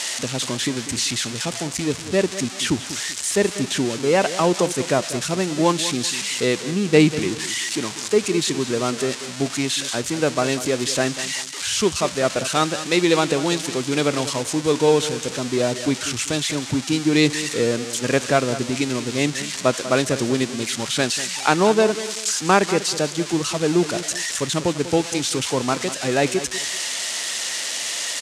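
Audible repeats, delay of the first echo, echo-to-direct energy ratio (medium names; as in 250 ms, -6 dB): 2, 194 ms, -13.0 dB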